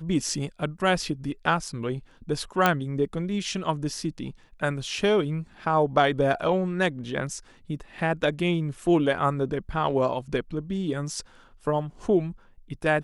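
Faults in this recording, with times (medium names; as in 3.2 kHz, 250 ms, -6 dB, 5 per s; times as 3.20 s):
2.66 s: pop -6 dBFS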